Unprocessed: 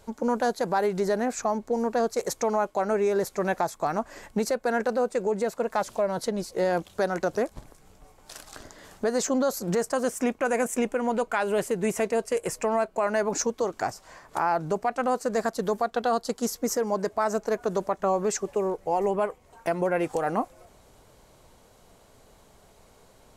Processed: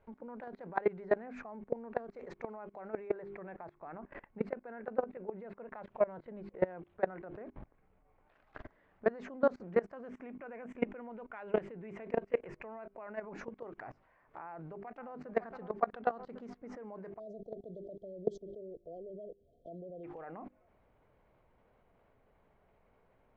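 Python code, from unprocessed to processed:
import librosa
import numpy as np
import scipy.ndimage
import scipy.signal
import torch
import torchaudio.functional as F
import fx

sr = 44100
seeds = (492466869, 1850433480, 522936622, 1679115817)

y = fx.peak_eq(x, sr, hz=6000.0, db=-14.5, octaves=0.77, at=(3.08, 8.34))
y = fx.echo_throw(y, sr, start_s=14.43, length_s=0.92, ms=550, feedback_pct=50, wet_db=-15.5)
y = fx.brickwall_bandstop(y, sr, low_hz=710.0, high_hz=3100.0, at=(17.18, 20.03), fade=0.02)
y = scipy.signal.sosfilt(scipy.signal.cheby1(3, 1.0, 2300.0, 'lowpass', fs=sr, output='sos'), y)
y = fx.hum_notches(y, sr, base_hz=50, count=8)
y = fx.level_steps(y, sr, step_db=23)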